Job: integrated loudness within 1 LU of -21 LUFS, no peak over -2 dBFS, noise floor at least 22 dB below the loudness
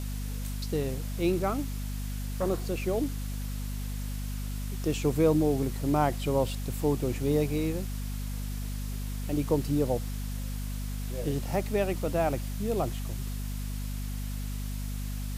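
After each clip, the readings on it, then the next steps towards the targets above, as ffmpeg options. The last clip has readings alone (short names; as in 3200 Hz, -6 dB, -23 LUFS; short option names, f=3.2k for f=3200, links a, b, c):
hum 50 Hz; harmonics up to 250 Hz; hum level -31 dBFS; noise floor -34 dBFS; noise floor target -53 dBFS; loudness -31.0 LUFS; peak -11.5 dBFS; loudness target -21.0 LUFS
-> -af "bandreject=f=50:t=h:w=4,bandreject=f=100:t=h:w=4,bandreject=f=150:t=h:w=4,bandreject=f=200:t=h:w=4,bandreject=f=250:t=h:w=4"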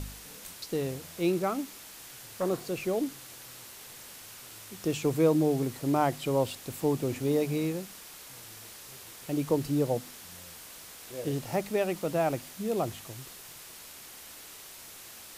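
hum none; noise floor -48 dBFS; noise floor target -53 dBFS
-> -af "afftdn=nr=6:nf=-48"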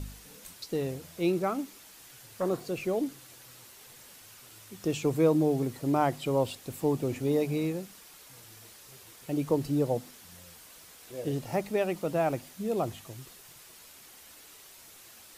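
noise floor -53 dBFS; loudness -30.5 LUFS; peak -12.0 dBFS; loudness target -21.0 LUFS
-> -af "volume=9.5dB"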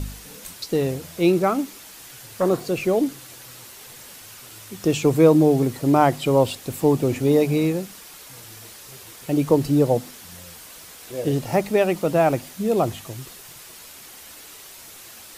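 loudness -21.0 LUFS; peak -2.5 dBFS; noise floor -43 dBFS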